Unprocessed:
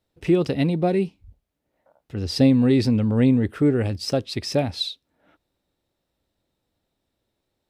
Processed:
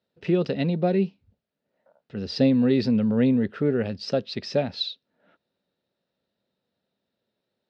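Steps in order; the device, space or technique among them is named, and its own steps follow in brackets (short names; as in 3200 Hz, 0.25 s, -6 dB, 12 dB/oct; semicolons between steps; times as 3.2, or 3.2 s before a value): kitchen radio (speaker cabinet 190–4500 Hz, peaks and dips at 200 Hz +4 dB, 310 Hz -10 dB, 800 Hz -6 dB, 1100 Hz -6 dB, 2200 Hz -6 dB, 3300 Hz -4 dB); gain +1 dB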